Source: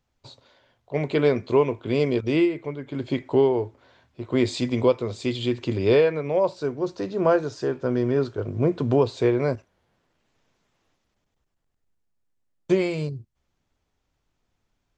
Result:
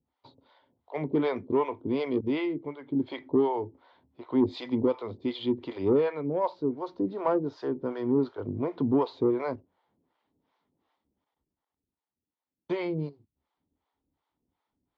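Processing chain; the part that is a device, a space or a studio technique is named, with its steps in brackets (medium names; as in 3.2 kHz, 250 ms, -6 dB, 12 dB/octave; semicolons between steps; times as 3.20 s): guitar amplifier with harmonic tremolo (harmonic tremolo 2.7 Hz, depth 100%, crossover 510 Hz; saturation -16.5 dBFS, distortion -19 dB; cabinet simulation 76–3700 Hz, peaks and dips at 120 Hz -8 dB, 280 Hz +7 dB, 610 Hz -3 dB, 900 Hz +6 dB, 1.6 kHz -6 dB, 2.6 kHz -9 dB)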